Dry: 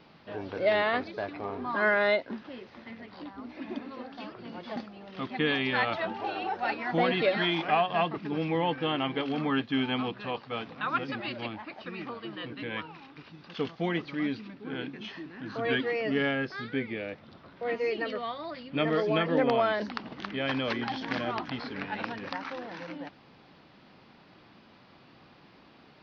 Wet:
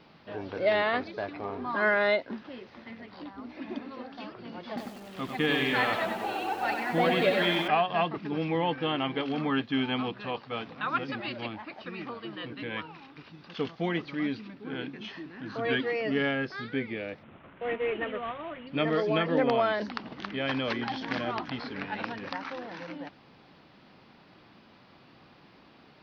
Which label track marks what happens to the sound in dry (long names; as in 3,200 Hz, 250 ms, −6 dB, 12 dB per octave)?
4.680000	7.680000	feedback echo at a low word length 96 ms, feedback 55%, word length 8 bits, level −5 dB
17.230000	18.670000	variable-slope delta modulation 16 kbit/s